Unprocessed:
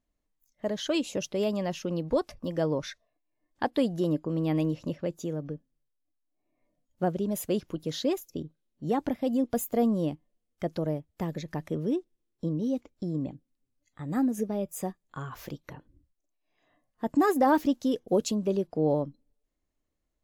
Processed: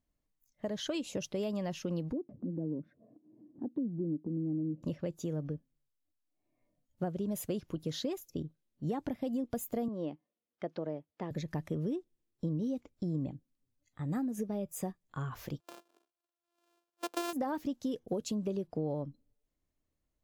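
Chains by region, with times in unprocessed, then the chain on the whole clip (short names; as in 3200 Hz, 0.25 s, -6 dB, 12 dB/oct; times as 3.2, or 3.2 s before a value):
2.12–4.83 Butterworth band-pass 250 Hz, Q 1.4 + upward compressor, threshold -31 dBFS
9.88–11.31 HPF 290 Hz + air absorption 180 m
15.6–17.33 sample sorter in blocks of 128 samples + HPF 360 Hz 24 dB/oct + bell 2000 Hz -10.5 dB 0.26 oct
whole clip: compressor 6:1, threshold -29 dBFS; bell 110 Hz +6 dB 1.5 oct; gain -3.5 dB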